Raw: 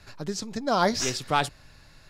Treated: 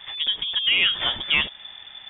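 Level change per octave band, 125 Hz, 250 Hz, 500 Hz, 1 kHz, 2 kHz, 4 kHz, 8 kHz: -9.5 dB, -12.5 dB, -14.0 dB, -11.0 dB, +9.5 dB, +14.0 dB, under -40 dB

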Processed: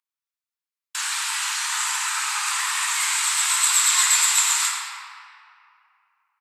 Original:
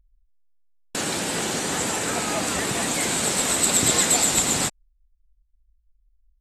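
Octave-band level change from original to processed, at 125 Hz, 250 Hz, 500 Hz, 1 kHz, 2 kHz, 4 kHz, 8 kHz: under -40 dB, under -40 dB, under -35 dB, +1.0 dB, +4.0 dB, +2.5 dB, +2.0 dB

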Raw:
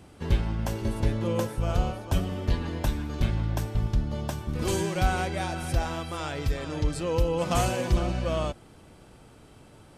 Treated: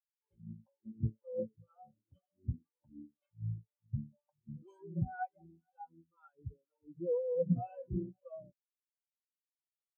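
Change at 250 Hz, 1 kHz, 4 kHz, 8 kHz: -11.5 dB, -15.5 dB, under -40 dB, under -40 dB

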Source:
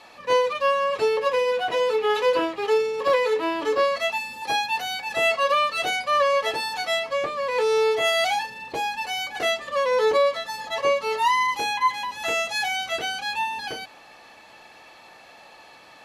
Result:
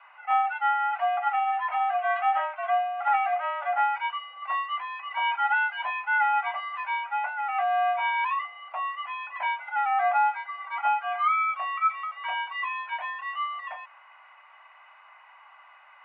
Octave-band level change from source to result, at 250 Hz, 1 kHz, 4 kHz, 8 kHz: under -40 dB, +0.5 dB, -13.5 dB, under -40 dB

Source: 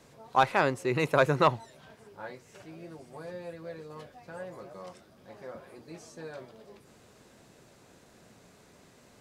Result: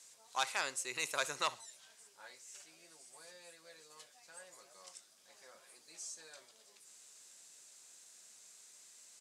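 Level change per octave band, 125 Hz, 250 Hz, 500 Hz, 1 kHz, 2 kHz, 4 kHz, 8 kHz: -30.5, -24.0, -18.5, -13.5, -8.0, -0.5, +9.0 dB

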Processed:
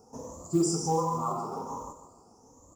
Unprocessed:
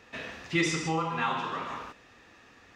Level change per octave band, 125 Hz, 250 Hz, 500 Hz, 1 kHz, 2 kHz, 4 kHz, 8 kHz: +2.0 dB, +2.5 dB, +4.0 dB, +0.5 dB, under -30 dB, -6.5 dB, +5.0 dB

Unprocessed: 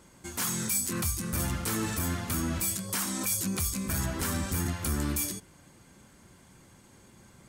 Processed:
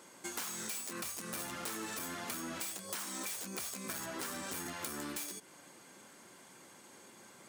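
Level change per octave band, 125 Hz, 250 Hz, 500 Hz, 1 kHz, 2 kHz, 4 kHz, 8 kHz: -22.0, -12.5, -6.5, -5.5, -6.0, -6.0, -9.5 dB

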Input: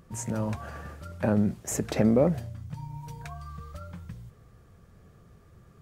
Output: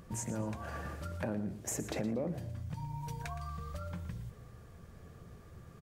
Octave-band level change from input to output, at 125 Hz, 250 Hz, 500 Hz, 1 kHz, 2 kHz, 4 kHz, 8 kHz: -7.5, -11.5, -11.5, -5.0, -5.0, -5.0, -4.5 dB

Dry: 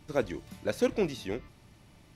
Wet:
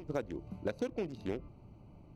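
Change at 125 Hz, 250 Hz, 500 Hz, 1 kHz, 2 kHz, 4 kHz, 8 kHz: -3.0 dB, -5.5 dB, -7.5 dB, -6.5 dB, -9.0 dB, -11.5 dB, under -10 dB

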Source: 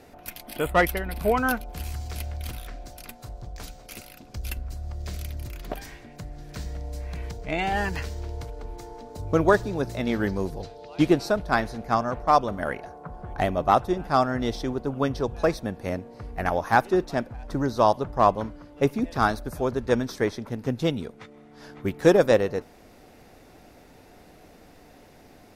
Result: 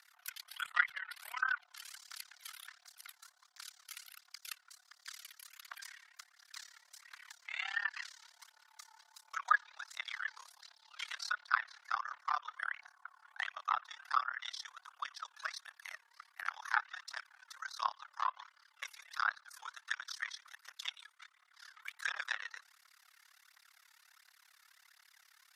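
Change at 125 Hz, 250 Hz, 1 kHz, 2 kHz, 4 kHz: under -40 dB, under -40 dB, -13.5 dB, -6.0 dB, -6.5 dB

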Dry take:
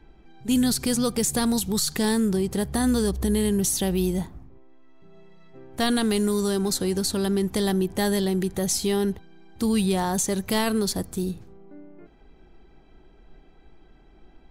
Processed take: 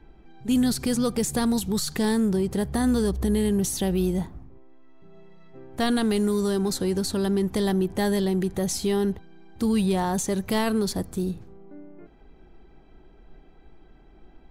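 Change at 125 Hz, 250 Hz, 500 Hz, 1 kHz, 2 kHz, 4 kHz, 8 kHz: 0.0, 0.0, 0.0, -0.5, -1.5, -3.5, -5.0 dB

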